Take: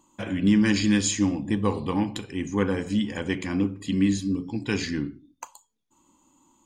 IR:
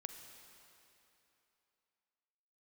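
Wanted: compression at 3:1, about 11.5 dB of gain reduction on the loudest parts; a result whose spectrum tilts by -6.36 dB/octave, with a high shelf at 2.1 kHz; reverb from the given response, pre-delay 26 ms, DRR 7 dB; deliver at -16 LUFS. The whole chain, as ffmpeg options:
-filter_complex "[0:a]highshelf=f=2100:g=-8.5,acompressor=threshold=0.0224:ratio=3,asplit=2[s0][s1];[1:a]atrim=start_sample=2205,adelay=26[s2];[s1][s2]afir=irnorm=-1:irlink=0,volume=0.668[s3];[s0][s3]amix=inputs=2:normalize=0,volume=8.91"

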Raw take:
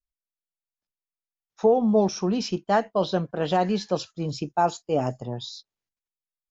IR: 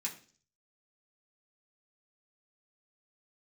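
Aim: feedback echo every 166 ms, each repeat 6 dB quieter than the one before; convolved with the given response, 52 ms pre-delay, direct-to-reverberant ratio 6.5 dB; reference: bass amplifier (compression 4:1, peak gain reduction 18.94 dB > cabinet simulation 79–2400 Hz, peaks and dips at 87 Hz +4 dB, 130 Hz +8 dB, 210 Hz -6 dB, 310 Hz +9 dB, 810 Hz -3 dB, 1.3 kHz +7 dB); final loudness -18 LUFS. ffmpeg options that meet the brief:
-filter_complex "[0:a]aecho=1:1:166|332|498|664|830|996:0.501|0.251|0.125|0.0626|0.0313|0.0157,asplit=2[s0][s1];[1:a]atrim=start_sample=2205,adelay=52[s2];[s1][s2]afir=irnorm=-1:irlink=0,volume=0.447[s3];[s0][s3]amix=inputs=2:normalize=0,acompressor=threshold=0.0141:ratio=4,highpass=f=79:w=0.5412,highpass=f=79:w=1.3066,equalizer=f=87:t=q:w=4:g=4,equalizer=f=130:t=q:w=4:g=8,equalizer=f=210:t=q:w=4:g=-6,equalizer=f=310:t=q:w=4:g=9,equalizer=f=810:t=q:w=4:g=-3,equalizer=f=1300:t=q:w=4:g=7,lowpass=f=2400:w=0.5412,lowpass=f=2400:w=1.3066,volume=9.44"

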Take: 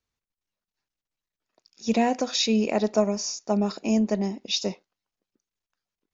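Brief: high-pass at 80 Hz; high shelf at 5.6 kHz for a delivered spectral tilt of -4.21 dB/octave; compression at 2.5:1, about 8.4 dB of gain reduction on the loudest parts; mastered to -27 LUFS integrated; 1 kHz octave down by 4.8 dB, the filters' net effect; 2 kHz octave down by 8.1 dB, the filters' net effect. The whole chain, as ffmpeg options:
-af "highpass=80,equalizer=f=1000:t=o:g=-6,equalizer=f=2000:t=o:g=-9,highshelf=f=5600:g=-3.5,acompressor=threshold=0.0251:ratio=2.5,volume=2.11"

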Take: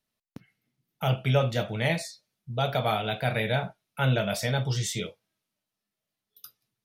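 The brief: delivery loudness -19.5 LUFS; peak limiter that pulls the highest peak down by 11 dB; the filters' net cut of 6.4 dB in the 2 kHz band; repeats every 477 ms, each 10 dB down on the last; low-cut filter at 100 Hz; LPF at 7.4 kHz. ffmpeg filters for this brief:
-af "highpass=100,lowpass=7400,equalizer=f=2000:t=o:g=-8.5,alimiter=limit=0.0668:level=0:latency=1,aecho=1:1:477|954|1431|1908:0.316|0.101|0.0324|0.0104,volume=5.31"

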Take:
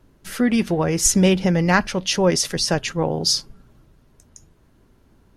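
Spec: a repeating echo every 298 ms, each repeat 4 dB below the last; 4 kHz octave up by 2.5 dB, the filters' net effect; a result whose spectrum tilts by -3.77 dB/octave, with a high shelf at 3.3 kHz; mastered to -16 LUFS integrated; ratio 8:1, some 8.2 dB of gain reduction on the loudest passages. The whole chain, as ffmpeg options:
-af "highshelf=f=3300:g=-5,equalizer=f=4000:t=o:g=8,acompressor=threshold=0.1:ratio=8,aecho=1:1:298|596|894|1192|1490|1788|2086|2384|2682:0.631|0.398|0.25|0.158|0.0994|0.0626|0.0394|0.0249|0.0157,volume=2.24"

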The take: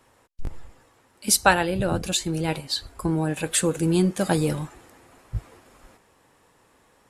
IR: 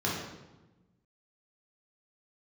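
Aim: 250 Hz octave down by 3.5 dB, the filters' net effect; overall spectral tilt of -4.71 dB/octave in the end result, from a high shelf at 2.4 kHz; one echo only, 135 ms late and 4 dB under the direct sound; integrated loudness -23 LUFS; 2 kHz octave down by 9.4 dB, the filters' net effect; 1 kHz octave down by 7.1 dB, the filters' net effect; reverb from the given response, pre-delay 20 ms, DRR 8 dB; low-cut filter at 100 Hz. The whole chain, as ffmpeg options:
-filter_complex "[0:a]highpass=100,equalizer=f=250:t=o:g=-5,equalizer=f=1000:t=o:g=-7,equalizer=f=2000:t=o:g=-8.5,highshelf=f=2400:g=-3.5,aecho=1:1:135:0.631,asplit=2[s0][s1];[1:a]atrim=start_sample=2205,adelay=20[s2];[s1][s2]afir=irnorm=-1:irlink=0,volume=0.141[s3];[s0][s3]amix=inputs=2:normalize=0,volume=1.26"

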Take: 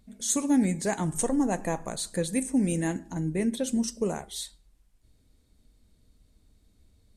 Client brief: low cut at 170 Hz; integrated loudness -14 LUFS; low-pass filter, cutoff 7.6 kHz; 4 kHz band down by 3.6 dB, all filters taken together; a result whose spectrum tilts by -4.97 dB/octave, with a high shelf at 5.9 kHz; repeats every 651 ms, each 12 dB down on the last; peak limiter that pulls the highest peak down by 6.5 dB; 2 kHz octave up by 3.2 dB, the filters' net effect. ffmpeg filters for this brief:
-af "highpass=170,lowpass=7600,equalizer=f=2000:t=o:g=5,equalizer=f=4000:t=o:g=-3.5,highshelf=f=5900:g=-4.5,alimiter=limit=0.0891:level=0:latency=1,aecho=1:1:651|1302|1953:0.251|0.0628|0.0157,volume=7.5"

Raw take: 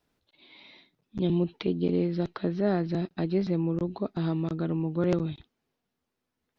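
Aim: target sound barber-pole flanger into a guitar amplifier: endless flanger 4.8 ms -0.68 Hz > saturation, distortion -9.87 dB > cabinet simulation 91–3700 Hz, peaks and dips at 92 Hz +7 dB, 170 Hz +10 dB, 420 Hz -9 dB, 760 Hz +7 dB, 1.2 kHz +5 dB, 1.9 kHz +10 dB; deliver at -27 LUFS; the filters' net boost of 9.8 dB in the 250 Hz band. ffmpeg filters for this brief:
-filter_complex "[0:a]equalizer=f=250:t=o:g=8,asplit=2[s0][s1];[s1]adelay=4.8,afreqshift=-0.68[s2];[s0][s2]amix=inputs=2:normalize=1,asoftclip=threshold=0.0562,highpass=91,equalizer=f=92:t=q:w=4:g=7,equalizer=f=170:t=q:w=4:g=10,equalizer=f=420:t=q:w=4:g=-9,equalizer=f=760:t=q:w=4:g=7,equalizer=f=1200:t=q:w=4:g=5,equalizer=f=1900:t=q:w=4:g=10,lowpass=f=3700:w=0.5412,lowpass=f=3700:w=1.3066,volume=0.944"

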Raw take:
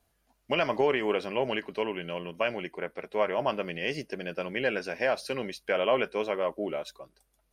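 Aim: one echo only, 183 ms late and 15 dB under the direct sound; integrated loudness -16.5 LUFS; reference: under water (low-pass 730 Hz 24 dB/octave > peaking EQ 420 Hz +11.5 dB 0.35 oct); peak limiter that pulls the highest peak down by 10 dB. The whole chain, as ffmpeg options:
-af "alimiter=limit=0.075:level=0:latency=1,lowpass=f=730:w=0.5412,lowpass=f=730:w=1.3066,equalizer=f=420:t=o:w=0.35:g=11.5,aecho=1:1:183:0.178,volume=5.01"

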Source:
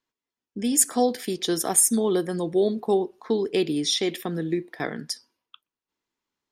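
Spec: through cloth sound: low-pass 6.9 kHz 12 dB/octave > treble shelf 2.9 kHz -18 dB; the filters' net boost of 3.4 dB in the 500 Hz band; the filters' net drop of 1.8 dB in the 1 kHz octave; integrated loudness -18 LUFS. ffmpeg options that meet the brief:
-af "lowpass=6900,equalizer=f=500:t=o:g=6,equalizer=f=1000:t=o:g=-4.5,highshelf=f=2900:g=-18,volume=2"

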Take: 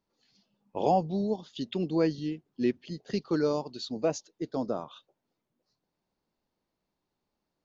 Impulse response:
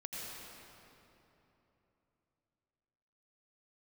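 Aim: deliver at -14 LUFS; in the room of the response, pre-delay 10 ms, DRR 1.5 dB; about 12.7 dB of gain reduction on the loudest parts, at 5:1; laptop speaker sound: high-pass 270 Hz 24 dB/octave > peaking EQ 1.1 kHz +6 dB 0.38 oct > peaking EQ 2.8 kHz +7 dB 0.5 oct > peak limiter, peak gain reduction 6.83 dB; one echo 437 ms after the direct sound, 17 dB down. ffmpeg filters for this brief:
-filter_complex "[0:a]acompressor=threshold=0.0178:ratio=5,aecho=1:1:437:0.141,asplit=2[s0][s1];[1:a]atrim=start_sample=2205,adelay=10[s2];[s1][s2]afir=irnorm=-1:irlink=0,volume=0.841[s3];[s0][s3]amix=inputs=2:normalize=0,highpass=f=270:w=0.5412,highpass=f=270:w=1.3066,equalizer=f=1100:t=o:w=0.38:g=6,equalizer=f=2800:t=o:w=0.5:g=7,volume=20,alimiter=limit=0.668:level=0:latency=1"

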